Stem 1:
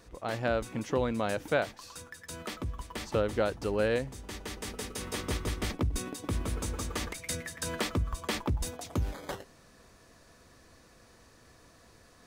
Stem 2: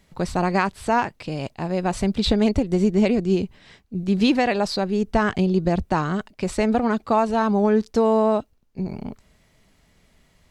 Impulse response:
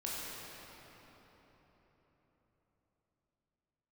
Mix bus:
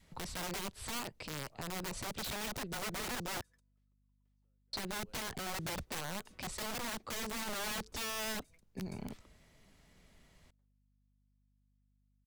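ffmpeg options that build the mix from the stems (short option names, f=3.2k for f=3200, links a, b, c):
-filter_complex "[0:a]acompressor=threshold=-38dB:ratio=6,adelay=1300,volume=-19dB[a];[1:a]adynamicequalizer=threshold=0.0282:dfrequency=450:dqfactor=1.7:tfrequency=450:tqfactor=1.7:attack=5:release=100:ratio=0.375:range=2.5:mode=boostabove:tftype=bell,aeval=exprs='(mod(7.94*val(0)+1,2)-1)/7.94':c=same,volume=-5dB,asplit=3[b][c][d];[b]atrim=end=3.41,asetpts=PTS-STARTPTS,afade=t=out:st=3.406:d=0.004:c=hsin[e];[c]atrim=start=3.41:end=4.73,asetpts=PTS-STARTPTS,volume=0[f];[d]atrim=start=4.73,asetpts=PTS-STARTPTS,afade=t=in:d=0.004:c=hsin[g];[e][f][g]concat=n=3:v=0:a=1,asplit=2[h][i];[i]apad=whole_len=598071[j];[a][j]sidechaingate=range=-34dB:threshold=-51dB:ratio=16:detection=peak[k];[k][h]amix=inputs=2:normalize=0,acrossover=split=130|1100|3600[l][m][n][o];[l]acompressor=threshold=-46dB:ratio=4[p];[m]acompressor=threshold=-42dB:ratio=4[q];[n]acompressor=threshold=-45dB:ratio=4[r];[o]acompressor=threshold=-40dB:ratio=4[s];[p][q][r][s]amix=inputs=4:normalize=0,aeval=exprs='val(0)+0.000224*(sin(2*PI*50*n/s)+sin(2*PI*2*50*n/s)/2+sin(2*PI*3*50*n/s)/3+sin(2*PI*4*50*n/s)/4+sin(2*PI*5*50*n/s)/5)':c=same,alimiter=level_in=5.5dB:limit=-24dB:level=0:latency=1:release=15,volume=-5.5dB"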